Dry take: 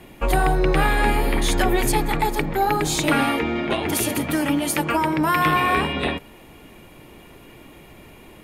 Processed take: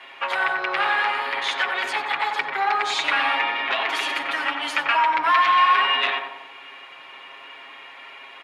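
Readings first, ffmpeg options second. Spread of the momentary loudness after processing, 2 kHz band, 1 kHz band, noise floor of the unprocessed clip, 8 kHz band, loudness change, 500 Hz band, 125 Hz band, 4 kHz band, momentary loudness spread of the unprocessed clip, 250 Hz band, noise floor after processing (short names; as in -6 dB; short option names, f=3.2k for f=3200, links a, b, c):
23 LU, +4.0 dB, +2.0 dB, -46 dBFS, -13.5 dB, 0.0 dB, -9.5 dB, under -30 dB, +4.0 dB, 4 LU, -19.5 dB, -43 dBFS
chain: -filter_complex "[0:a]aecho=1:1:7.4:0.84,acompressor=threshold=-21dB:ratio=2,aeval=exprs='0.473*sin(PI/2*2.51*val(0)/0.473)':c=same,asuperpass=centerf=1900:order=4:qfactor=0.72,asplit=2[a][b];[b]adelay=92,lowpass=f=1.4k:p=1,volume=-3dB,asplit=2[c][d];[d]adelay=92,lowpass=f=1.4k:p=1,volume=0.54,asplit=2[e][f];[f]adelay=92,lowpass=f=1.4k:p=1,volume=0.54,asplit=2[g][h];[h]adelay=92,lowpass=f=1.4k:p=1,volume=0.54,asplit=2[i][j];[j]adelay=92,lowpass=f=1.4k:p=1,volume=0.54,asplit=2[k][l];[l]adelay=92,lowpass=f=1.4k:p=1,volume=0.54,asplit=2[m][n];[n]adelay=92,lowpass=f=1.4k:p=1,volume=0.54[o];[a][c][e][g][i][k][m][o]amix=inputs=8:normalize=0,volume=-4.5dB"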